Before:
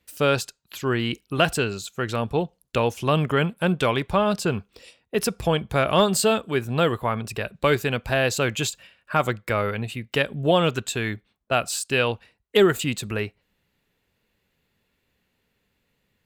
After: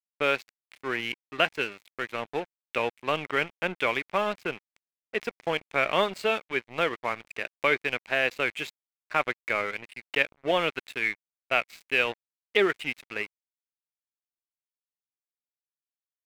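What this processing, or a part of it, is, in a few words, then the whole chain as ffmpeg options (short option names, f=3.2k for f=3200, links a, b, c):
pocket radio on a weak battery: -filter_complex "[0:a]highpass=320,lowpass=3.6k,aeval=exprs='sgn(val(0))*max(abs(val(0))-0.0168,0)':c=same,equalizer=f=2.2k:t=o:w=0.57:g=11,asettb=1/sr,asplit=3[a][b][c];[a]atrim=end=11.024[d];[b]atrim=start=11.02:end=11.76,asetpts=PTS-STARTPTS,afade=t=in:d=0.004:c=qsin,afade=t=out:st=0.736:d=0.004:c=qsin,equalizer=f=2.2k:t=o:w=0.21:g=6.5[e];[c]atrim=start=11.756[f];[d][e]acrossfade=d=0.004:c1=hsin:c2=qsin[g];[g][f]acrossfade=d=0.004:c1=qsin:c2=hsin,volume=-4.5dB"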